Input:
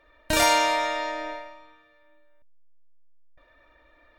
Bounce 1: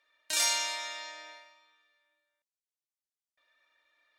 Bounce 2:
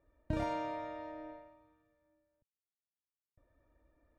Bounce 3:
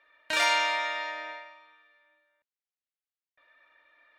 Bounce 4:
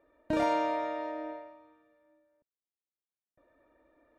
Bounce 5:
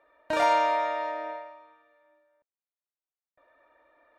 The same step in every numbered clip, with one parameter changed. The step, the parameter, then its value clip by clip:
resonant band-pass, frequency: 6,700, 110, 2,200, 300, 770 Hertz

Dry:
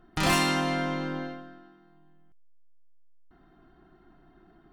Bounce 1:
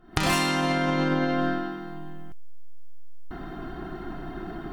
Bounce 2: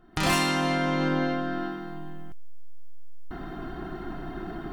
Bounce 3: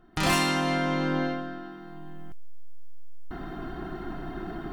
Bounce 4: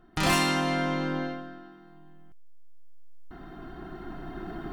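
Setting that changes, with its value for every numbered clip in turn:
camcorder AGC, rising by: 88, 34, 13, 5.1 dB per second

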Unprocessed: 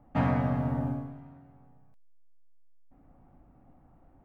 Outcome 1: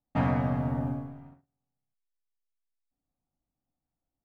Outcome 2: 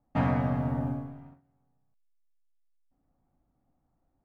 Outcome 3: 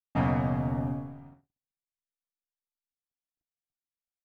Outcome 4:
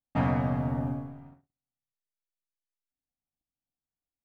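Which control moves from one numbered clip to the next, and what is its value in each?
noise gate, range: −30, −16, −57, −42 decibels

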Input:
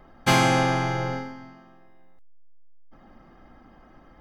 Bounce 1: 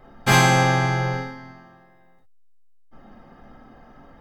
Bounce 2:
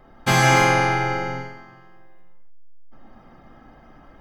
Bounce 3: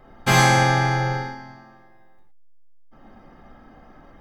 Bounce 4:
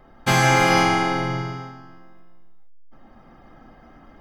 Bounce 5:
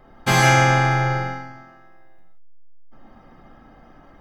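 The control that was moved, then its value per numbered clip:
reverb whose tail is shaped and stops, gate: 80, 330, 140, 520, 210 milliseconds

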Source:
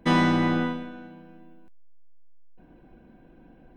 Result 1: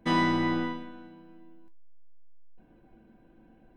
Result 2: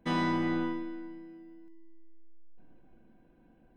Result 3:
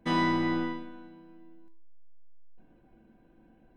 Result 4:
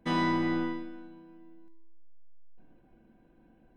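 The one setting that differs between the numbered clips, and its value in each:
tuned comb filter, decay: 0.17, 2.1, 0.43, 0.9 seconds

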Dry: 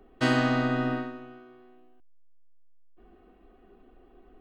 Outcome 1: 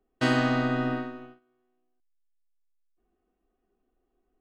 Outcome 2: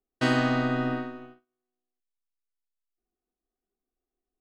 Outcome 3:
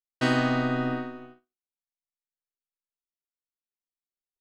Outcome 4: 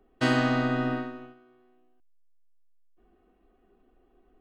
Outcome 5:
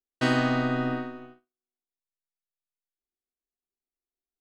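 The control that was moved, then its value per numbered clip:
noise gate, range: −20, −34, −59, −8, −47 decibels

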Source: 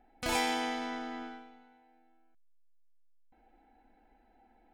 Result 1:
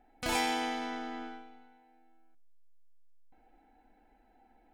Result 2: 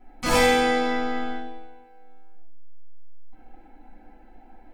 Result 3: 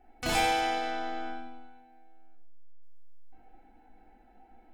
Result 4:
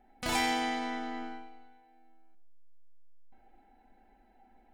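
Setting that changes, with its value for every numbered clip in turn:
rectangular room, microphone at: 0.4, 11, 3.5, 1.2 metres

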